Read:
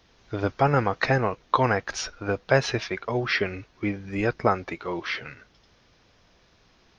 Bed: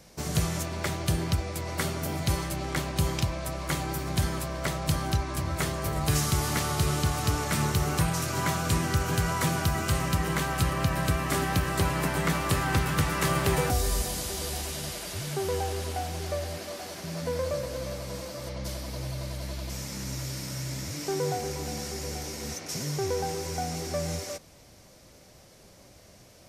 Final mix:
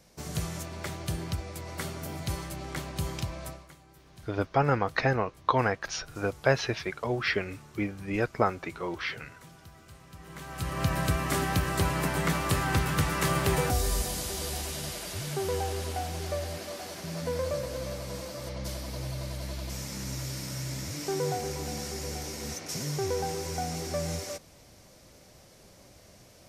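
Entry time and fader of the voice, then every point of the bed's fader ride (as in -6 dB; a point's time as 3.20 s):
3.95 s, -3.5 dB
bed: 3.49 s -6 dB
3.74 s -25 dB
10.06 s -25 dB
10.86 s -1 dB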